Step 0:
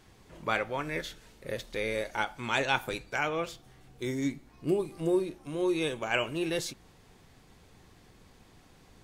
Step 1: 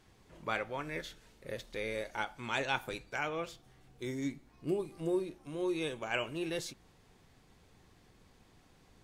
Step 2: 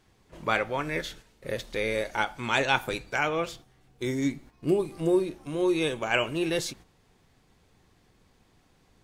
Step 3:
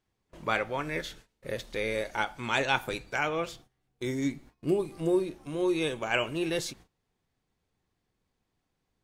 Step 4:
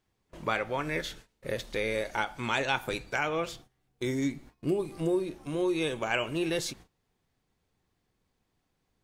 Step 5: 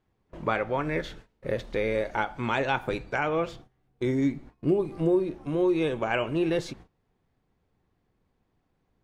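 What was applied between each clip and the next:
treble shelf 12 kHz -3 dB; trim -5.5 dB
gate -56 dBFS, range -9 dB; trim +9 dB
gate -51 dBFS, range -14 dB; trim -2.5 dB
compression 2:1, threshold -30 dBFS, peak gain reduction 5.5 dB; trim +2.5 dB
low-pass 1.3 kHz 6 dB/octave; trim +5 dB

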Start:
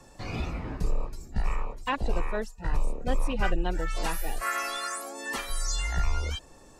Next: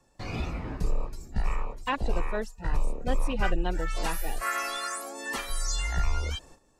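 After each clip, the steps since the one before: gate -49 dBFS, range -13 dB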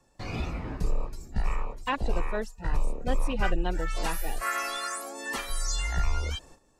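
no audible change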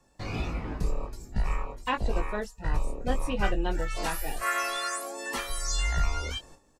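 doubling 20 ms -7 dB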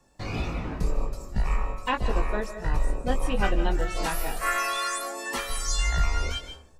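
algorithmic reverb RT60 0.67 s, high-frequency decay 0.4×, pre-delay 110 ms, DRR 9.5 dB; trim +2 dB

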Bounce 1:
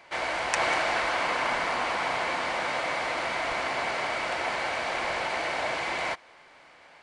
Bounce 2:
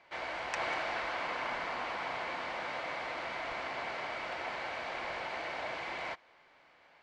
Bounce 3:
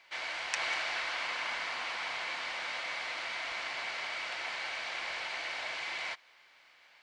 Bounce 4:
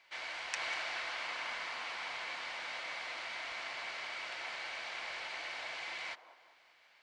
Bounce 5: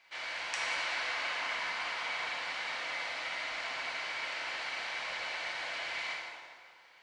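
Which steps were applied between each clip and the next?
low-pass 5 kHz 12 dB/octave; trim -9 dB
tilt shelf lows -10 dB, about 1.4 kHz
feedback echo behind a band-pass 195 ms, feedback 46%, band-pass 570 Hz, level -9.5 dB; trim -4.5 dB
plate-style reverb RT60 1.8 s, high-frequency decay 0.8×, DRR -2.5 dB

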